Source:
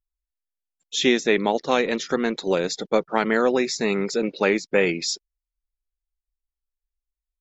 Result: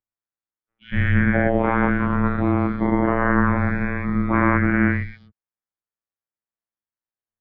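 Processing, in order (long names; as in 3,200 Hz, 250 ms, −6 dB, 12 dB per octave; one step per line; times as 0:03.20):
every bin's largest magnitude spread in time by 240 ms
phases set to zero 116 Hz
single-sideband voice off tune −250 Hz 230–2,200 Hz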